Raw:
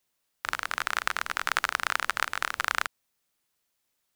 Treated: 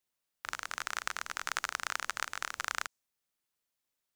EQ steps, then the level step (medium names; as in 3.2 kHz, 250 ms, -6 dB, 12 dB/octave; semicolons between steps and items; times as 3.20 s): dynamic bell 6.6 kHz, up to +8 dB, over -55 dBFS, Q 1.5; -8.5 dB